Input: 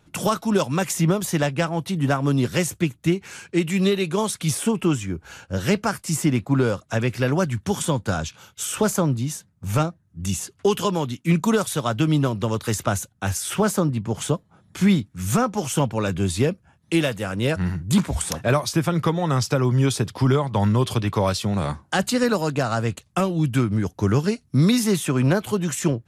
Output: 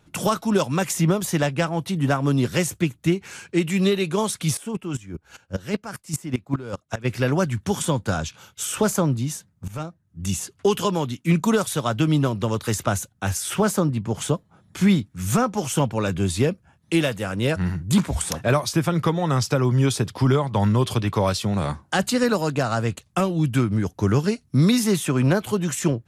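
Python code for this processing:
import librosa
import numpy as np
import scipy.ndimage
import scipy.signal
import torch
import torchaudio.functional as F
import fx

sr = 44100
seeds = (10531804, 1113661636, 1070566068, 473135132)

y = fx.volume_shaper(x, sr, bpm=151, per_beat=2, depth_db=fx.line((4.55, -14.0), (7.04, -20.0)), release_ms=173.0, shape='slow start', at=(4.55, 7.04), fade=0.02)
y = fx.edit(y, sr, fx.fade_in_from(start_s=9.68, length_s=0.62, floor_db=-17.0), tone=tone)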